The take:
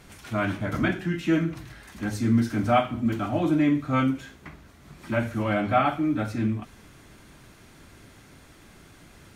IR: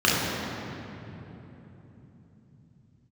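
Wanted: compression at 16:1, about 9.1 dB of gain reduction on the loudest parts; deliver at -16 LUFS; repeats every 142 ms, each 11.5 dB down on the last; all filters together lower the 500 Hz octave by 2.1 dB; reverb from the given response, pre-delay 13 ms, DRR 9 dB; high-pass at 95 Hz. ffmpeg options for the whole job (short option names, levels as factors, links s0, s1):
-filter_complex "[0:a]highpass=95,equalizer=f=500:t=o:g=-3,acompressor=threshold=0.0501:ratio=16,aecho=1:1:142|284|426:0.266|0.0718|0.0194,asplit=2[s0][s1];[1:a]atrim=start_sample=2205,adelay=13[s2];[s1][s2]afir=irnorm=-1:irlink=0,volume=0.0376[s3];[s0][s3]amix=inputs=2:normalize=0,volume=5.31"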